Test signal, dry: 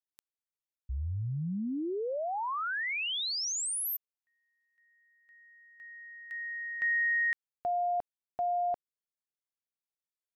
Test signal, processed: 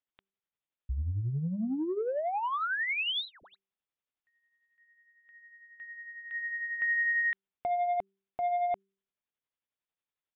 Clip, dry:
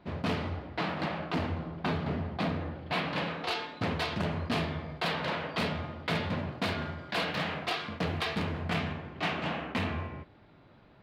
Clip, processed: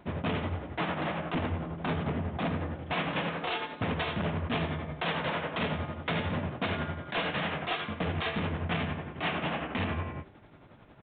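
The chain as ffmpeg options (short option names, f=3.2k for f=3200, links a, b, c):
-af "tremolo=f=11:d=0.5,aresample=16000,asoftclip=type=tanh:threshold=-30dB,aresample=44100,aresample=8000,aresample=44100,bandreject=f=194.7:t=h:w=4,bandreject=f=389.4:t=h:w=4,volume=5.5dB"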